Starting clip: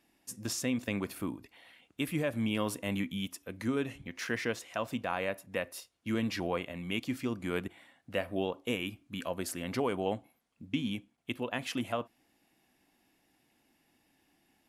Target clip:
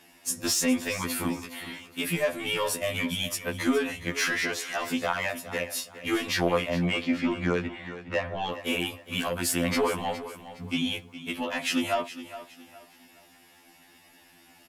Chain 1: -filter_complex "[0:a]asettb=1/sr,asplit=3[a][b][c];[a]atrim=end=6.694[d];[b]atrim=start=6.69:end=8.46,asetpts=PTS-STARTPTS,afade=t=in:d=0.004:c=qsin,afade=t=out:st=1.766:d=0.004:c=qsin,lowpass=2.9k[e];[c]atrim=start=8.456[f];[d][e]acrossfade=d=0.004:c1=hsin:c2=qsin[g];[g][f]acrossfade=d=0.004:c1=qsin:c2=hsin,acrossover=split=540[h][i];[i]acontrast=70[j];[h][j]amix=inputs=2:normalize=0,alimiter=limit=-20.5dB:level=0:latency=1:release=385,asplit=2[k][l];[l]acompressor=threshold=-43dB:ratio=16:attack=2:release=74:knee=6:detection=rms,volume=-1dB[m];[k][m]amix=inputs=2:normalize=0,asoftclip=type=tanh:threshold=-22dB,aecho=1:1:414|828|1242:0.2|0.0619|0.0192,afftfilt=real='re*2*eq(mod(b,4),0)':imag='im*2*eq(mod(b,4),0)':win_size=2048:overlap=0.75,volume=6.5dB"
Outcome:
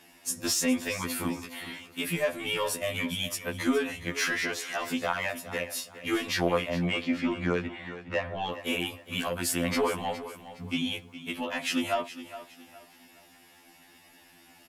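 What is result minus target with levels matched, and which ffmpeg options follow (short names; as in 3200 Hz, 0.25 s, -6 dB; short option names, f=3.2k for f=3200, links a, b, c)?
compressor: peak gain reduction +10.5 dB
-filter_complex "[0:a]asettb=1/sr,asplit=3[a][b][c];[a]atrim=end=6.694[d];[b]atrim=start=6.69:end=8.46,asetpts=PTS-STARTPTS,afade=t=in:d=0.004:c=qsin,afade=t=out:st=1.766:d=0.004:c=qsin,lowpass=2.9k[e];[c]atrim=start=8.456[f];[d][e]acrossfade=d=0.004:c1=hsin:c2=qsin[g];[g][f]acrossfade=d=0.004:c1=qsin:c2=hsin,acrossover=split=540[h][i];[i]acontrast=70[j];[h][j]amix=inputs=2:normalize=0,alimiter=limit=-20.5dB:level=0:latency=1:release=385,asplit=2[k][l];[l]acompressor=threshold=-32dB:ratio=16:attack=2:release=74:knee=6:detection=rms,volume=-1dB[m];[k][m]amix=inputs=2:normalize=0,asoftclip=type=tanh:threshold=-22dB,aecho=1:1:414|828|1242:0.2|0.0619|0.0192,afftfilt=real='re*2*eq(mod(b,4),0)':imag='im*2*eq(mod(b,4),0)':win_size=2048:overlap=0.75,volume=6.5dB"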